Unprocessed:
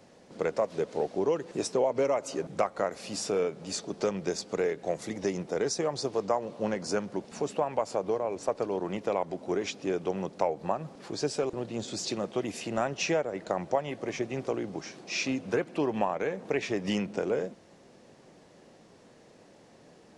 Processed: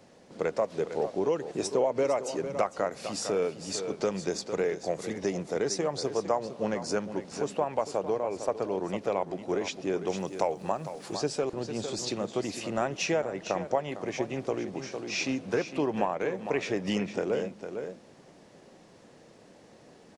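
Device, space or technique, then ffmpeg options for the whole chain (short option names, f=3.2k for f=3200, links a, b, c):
ducked delay: -filter_complex "[0:a]asplit=3[a][b][c];[b]adelay=454,volume=-4.5dB[d];[c]apad=whole_len=909573[e];[d][e]sidechaincompress=threshold=-30dB:ratio=8:attack=16:release=1100[f];[a][f]amix=inputs=2:normalize=0,asettb=1/sr,asplit=3[g][h][i];[g]atrim=end=10.074[j];[h]atrim=start=10.07:end=11.17,asetpts=PTS-STARTPTS,afade=t=in:d=0.004:c=qsin,afade=t=out:st=1.096:d=0.004:c=qsin,aemphasis=mode=production:type=50fm[k];[i]atrim=start=11.166[l];[j][k]acrossfade=d=0.004:c1=hsin:c2=qsin[m];[m][l]acrossfade=d=0.004:c1=qsin:c2=hsin"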